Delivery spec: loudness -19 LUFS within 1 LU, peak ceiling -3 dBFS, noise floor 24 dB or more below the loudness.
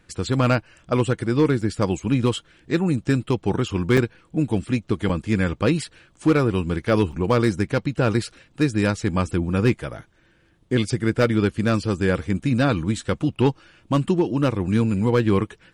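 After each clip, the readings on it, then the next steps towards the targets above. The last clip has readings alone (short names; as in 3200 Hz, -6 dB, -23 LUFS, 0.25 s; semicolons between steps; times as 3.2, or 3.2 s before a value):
clipped 0.7%; flat tops at -10.0 dBFS; dropouts 4; longest dropout 5.1 ms; loudness -22.5 LUFS; peak -10.0 dBFS; loudness target -19.0 LUFS
-> clip repair -10 dBFS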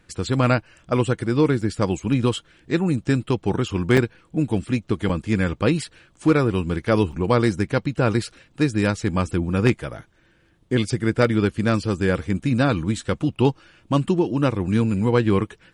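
clipped 0.0%; dropouts 4; longest dropout 5.1 ms
-> interpolate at 1.61/3.97/5.09/7.12, 5.1 ms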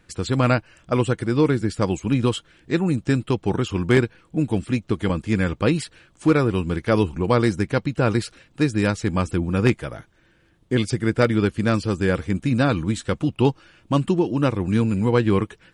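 dropouts 0; loudness -22.0 LUFS; peak -1.0 dBFS; loudness target -19.0 LUFS
-> gain +3 dB; limiter -3 dBFS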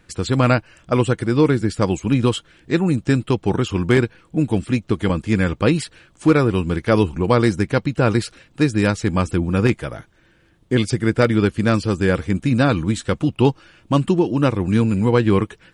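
loudness -19.0 LUFS; peak -3.0 dBFS; noise floor -56 dBFS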